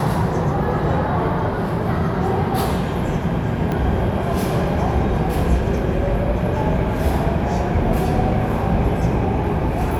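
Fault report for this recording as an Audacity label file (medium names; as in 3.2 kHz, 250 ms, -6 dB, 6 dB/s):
3.720000	3.720000	pop -12 dBFS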